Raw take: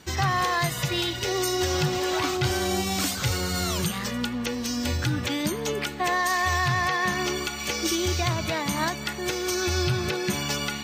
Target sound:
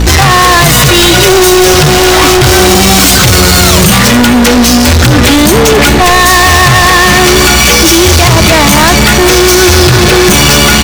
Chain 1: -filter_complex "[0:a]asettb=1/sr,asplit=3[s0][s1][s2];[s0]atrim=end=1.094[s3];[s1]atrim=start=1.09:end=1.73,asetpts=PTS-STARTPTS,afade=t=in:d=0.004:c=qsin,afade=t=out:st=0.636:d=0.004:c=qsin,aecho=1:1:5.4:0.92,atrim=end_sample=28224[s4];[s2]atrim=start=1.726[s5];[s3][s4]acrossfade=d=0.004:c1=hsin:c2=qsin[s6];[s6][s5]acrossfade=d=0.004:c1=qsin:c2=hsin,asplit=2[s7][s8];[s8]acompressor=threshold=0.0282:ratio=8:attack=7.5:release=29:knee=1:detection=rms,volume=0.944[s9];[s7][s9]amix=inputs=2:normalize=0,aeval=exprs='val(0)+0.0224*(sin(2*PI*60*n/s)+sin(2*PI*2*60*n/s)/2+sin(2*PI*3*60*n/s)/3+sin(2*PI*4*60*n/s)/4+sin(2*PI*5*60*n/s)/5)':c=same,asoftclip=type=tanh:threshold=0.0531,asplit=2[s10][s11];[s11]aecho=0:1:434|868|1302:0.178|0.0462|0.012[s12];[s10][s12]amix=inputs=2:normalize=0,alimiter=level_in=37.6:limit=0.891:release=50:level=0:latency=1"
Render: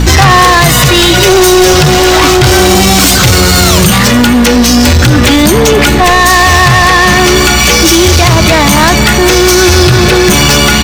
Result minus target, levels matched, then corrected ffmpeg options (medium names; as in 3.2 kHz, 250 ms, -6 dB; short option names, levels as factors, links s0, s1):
saturation: distortion -4 dB
-filter_complex "[0:a]asettb=1/sr,asplit=3[s0][s1][s2];[s0]atrim=end=1.094[s3];[s1]atrim=start=1.09:end=1.73,asetpts=PTS-STARTPTS,afade=t=in:d=0.004:c=qsin,afade=t=out:st=0.636:d=0.004:c=qsin,aecho=1:1:5.4:0.92,atrim=end_sample=28224[s4];[s2]atrim=start=1.726[s5];[s3][s4]acrossfade=d=0.004:c1=hsin:c2=qsin[s6];[s6][s5]acrossfade=d=0.004:c1=qsin:c2=hsin,asplit=2[s7][s8];[s8]acompressor=threshold=0.0282:ratio=8:attack=7.5:release=29:knee=1:detection=rms,volume=0.944[s9];[s7][s9]amix=inputs=2:normalize=0,aeval=exprs='val(0)+0.0224*(sin(2*PI*60*n/s)+sin(2*PI*2*60*n/s)/2+sin(2*PI*3*60*n/s)/3+sin(2*PI*4*60*n/s)/4+sin(2*PI*5*60*n/s)/5)':c=same,asoftclip=type=tanh:threshold=0.0178,asplit=2[s10][s11];[s11]aecho=0:1:434|868|1302:0.178|0.0462|0.012[s12];[s10][s12]amix=inputs=2:normalize=0,alimiter=level_in=37.6:limit=0.891:release=50:level=0:latency=1"